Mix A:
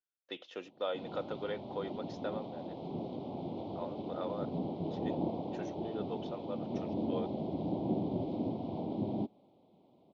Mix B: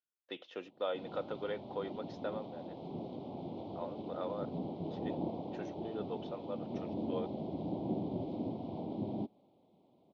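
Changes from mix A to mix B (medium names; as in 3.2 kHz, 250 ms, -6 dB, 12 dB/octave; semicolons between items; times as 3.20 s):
speech: add distance through air 98 m; background -3.0 dB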